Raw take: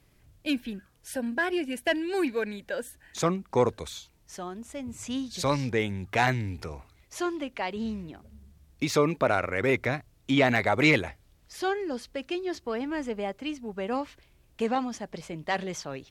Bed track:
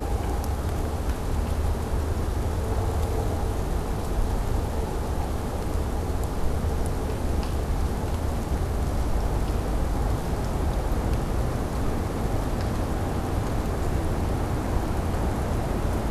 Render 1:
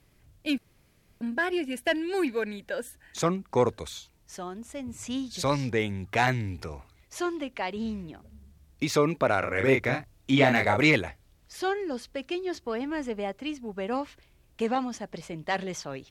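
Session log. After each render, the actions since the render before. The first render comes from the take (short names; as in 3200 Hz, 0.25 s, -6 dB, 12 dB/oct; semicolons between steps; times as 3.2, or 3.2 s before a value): 0.58–1.21 room tone; 9.39–10.81 doubler 30 ms -4 dB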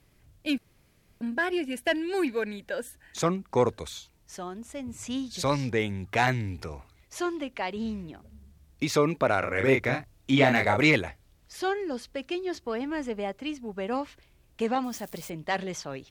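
14.84–15.3 switching spikes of -37.5 dBFS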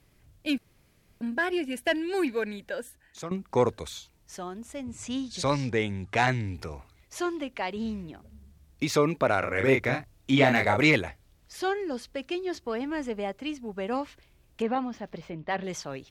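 2.61–3.31 fade out, to -14.5 dB; 4.83–6.54 LPF 9900 Hz 24 dB/oct; 14.62–15.64 air absorption 250 m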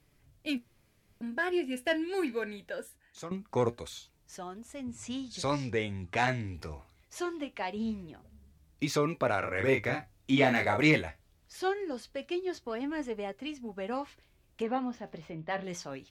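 flange 0.23 Hz, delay 6.5 ms, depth 6.6 ms, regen +64%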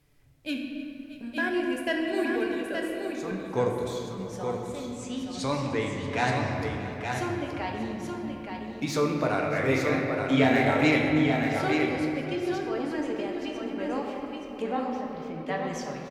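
tapped delay 0.306/0.631/0.874 s -20/-17/-5.5 dB; shoebox room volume 150 m³, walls hard, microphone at 0.4 m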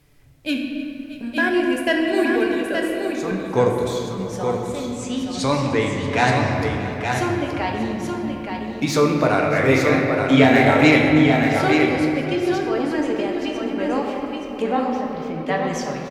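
gain +8.5 dB; limiter -2 dBFS, peak gain reduction 1.5 dB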